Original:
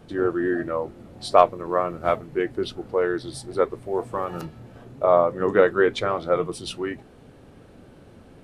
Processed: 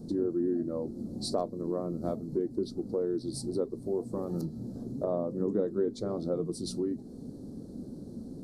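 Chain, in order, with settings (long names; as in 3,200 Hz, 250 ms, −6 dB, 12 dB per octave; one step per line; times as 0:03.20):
drawn EQ curve 110 Hz 0 dB, 230 Hz +12 dB, 2,800 Hz −30 dB, 4,300 Hz +1 dB
downward compressor 2.5 to 1, threshold −32 dBFS, peak gain reduction 14 dB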